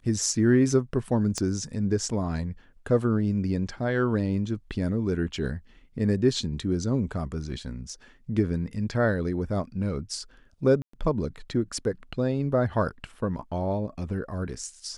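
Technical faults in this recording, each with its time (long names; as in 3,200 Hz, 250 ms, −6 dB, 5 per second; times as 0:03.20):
0:01.38: click −17 dBFS
0:10.82–0:10.93: drop-out 114 ms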